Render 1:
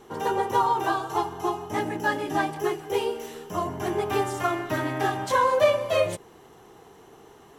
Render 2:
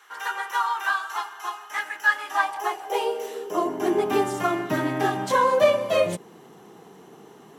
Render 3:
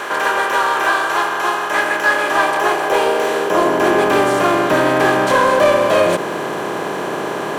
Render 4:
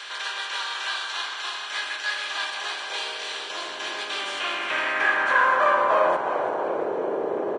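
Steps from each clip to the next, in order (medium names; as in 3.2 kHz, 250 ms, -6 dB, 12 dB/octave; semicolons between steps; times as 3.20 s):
high-pass sweep 1.5 kHz -> 180 Hz, 2.05–4.36 s; trim +1 dB
spectral levelling over time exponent 0.4; in parallel at -4 dB: hard clipper -14.5 dBFS, distortion -12 dB; on the sum: trim -1 dB
band-pass sweep 3.9 kHz -> 480 Hz, 4.09–6.94 s; frequency-shifting echo 344 ms, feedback 51%, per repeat -41 Hz, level -10 dB; Vorbis 32 kbps 22.05 kHz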